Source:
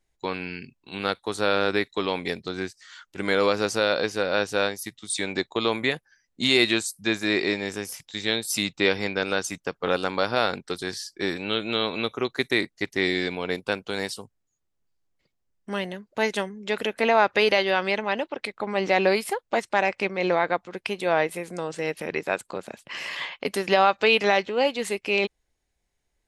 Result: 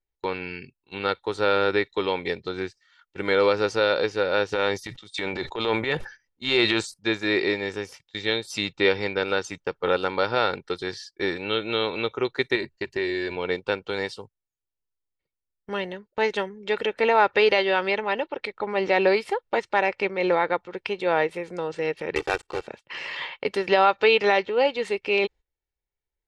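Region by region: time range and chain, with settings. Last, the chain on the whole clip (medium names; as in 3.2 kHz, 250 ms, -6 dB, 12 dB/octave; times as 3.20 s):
4.52–6.94 s: transient shaper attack -10 dB, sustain +7 dB + decay stretcher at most 110 dB/s
12.55–13.36 s: rippled EQ curve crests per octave 1.4, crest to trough 9 dB + compression 2.5:1, threshold -25 dBFS
22.15–22.68 s: block-companded coder 3-bit + comb 2.6 ms, depth 45%
whole clip: low-pass 4.1 kHz 12 dB/octave; gate -43 dBFS, range -14 dB; comb 2.2 ms, depth 42%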